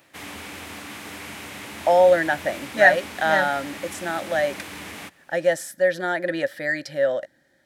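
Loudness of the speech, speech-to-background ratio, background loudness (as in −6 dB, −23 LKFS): −22.0 LKFS, 14.0 dB, −36.0 LKFS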